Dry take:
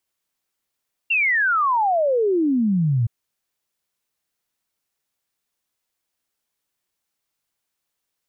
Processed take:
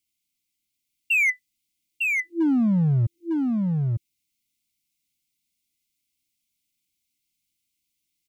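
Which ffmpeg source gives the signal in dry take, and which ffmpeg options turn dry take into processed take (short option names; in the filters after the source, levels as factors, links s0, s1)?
-f lavfi -i "aevalsrc='0.158*clip(min(t,1.97-t)/0.01,0,1)*sin(2*PI*2800*1.97/log(110/2800)*(exp(log(110/2800)*t/1.97)-1))':d=1.97:s=44100"
-filter_complex "[0:a]afftfilt=real='re*(1-between(b*sr/4096,340,2000))':imag='im*(1-between(b*sr/4096,340,2000))':win_size=4096:overlap=0.75,asoftclip=type=hard:threshold=0.133,asplit=2[s0][s1];[s1]aecho=0:1:903:0.668[s2];[s0][s2]amix=inputs=2:normalize=0"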